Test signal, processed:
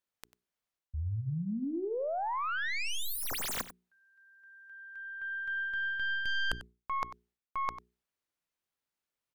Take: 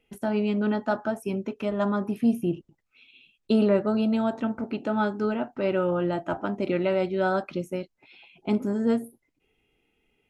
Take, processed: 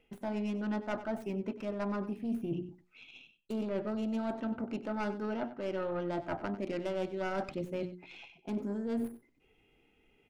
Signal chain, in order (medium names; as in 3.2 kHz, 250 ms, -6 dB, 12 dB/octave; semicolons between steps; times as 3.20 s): tracing distortion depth 0.22 ms; treble shelf 4.1 kHz -8 dB; hum notches 60/120/180/240/300/360/420 Hz; reverse; compression 6:1, threshold -37 dBFS; reverse; wavefolder -23 dBFS; on a send: delay 95 ms -14.5 dB; on the sum: trim +3.5 dB